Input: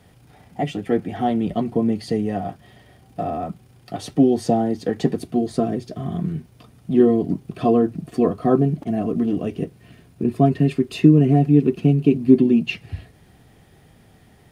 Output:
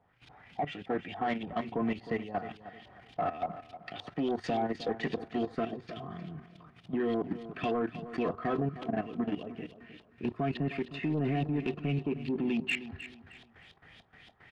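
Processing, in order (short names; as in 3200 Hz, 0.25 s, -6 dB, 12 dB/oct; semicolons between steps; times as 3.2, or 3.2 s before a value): tilt shelf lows -9 dB, about 1200 Hz; LFO low-pass saw up 3.5 Hz 750–3800 Hz; level quantiser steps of 14 dB; soft clip -22.5 dBFS, distortion -19 dB; on a send: feedback echo 0.31 s, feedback 30%, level -13.5 dB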